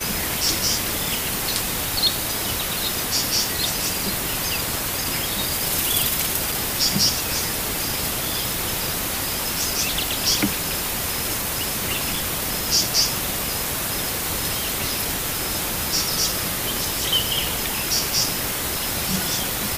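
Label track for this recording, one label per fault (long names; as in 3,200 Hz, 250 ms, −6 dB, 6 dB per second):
6.520000	6.520000	drop-out 3.3 ms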